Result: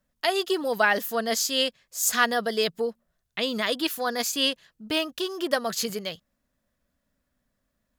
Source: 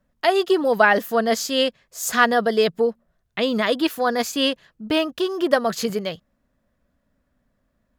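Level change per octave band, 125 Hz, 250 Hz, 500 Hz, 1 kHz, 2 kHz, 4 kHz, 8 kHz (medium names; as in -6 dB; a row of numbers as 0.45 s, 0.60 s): -8.0 dB, -8.0 dB, -7.5 dB, -6.5 dB, -4.5 dB, -1.0 dB, +2.0 dB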